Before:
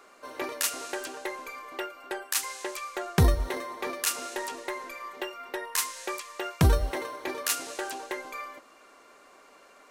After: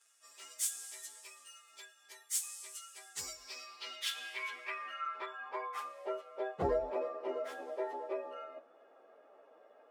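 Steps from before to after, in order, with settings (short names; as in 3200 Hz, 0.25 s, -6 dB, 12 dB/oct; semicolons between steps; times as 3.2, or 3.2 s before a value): inharmonic rescaling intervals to 109%; band-pass sweep 7800 Hz -> 560 Hz, 3.09–6.19; gain +5 dB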